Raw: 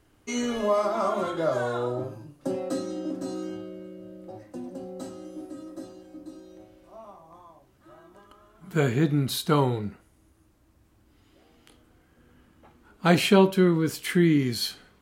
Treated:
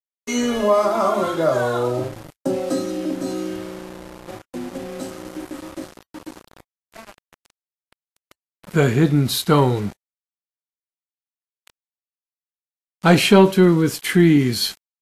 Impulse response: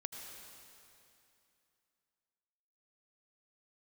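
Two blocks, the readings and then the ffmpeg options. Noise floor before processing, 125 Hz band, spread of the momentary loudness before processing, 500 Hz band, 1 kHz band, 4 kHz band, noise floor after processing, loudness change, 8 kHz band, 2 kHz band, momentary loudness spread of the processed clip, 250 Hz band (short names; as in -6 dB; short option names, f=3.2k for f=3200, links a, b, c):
-62 dBFS, +7.0 dB, 21 LU, +7.0 dB, +7.0 dB, +7.0 dB, under -85 dBFS, +7.0 dB, +7.5 dB, +6.5 dB, 20 LU, +7.0 dB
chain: -af "aeval=exprs='val(0)*gte(abs(val(0)),0.00944)':c=same,acontrast=62,volume=1dB" -ar 32000 -c:a libvorbis -b:a 64k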